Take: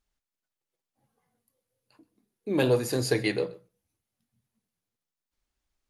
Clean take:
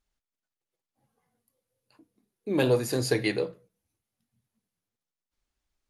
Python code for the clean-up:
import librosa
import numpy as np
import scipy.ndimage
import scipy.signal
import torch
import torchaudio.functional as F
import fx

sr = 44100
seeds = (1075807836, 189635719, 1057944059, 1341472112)

y = fx.fix_echo_inverse(x, sr, delay_ms=128, level_db=-22.0)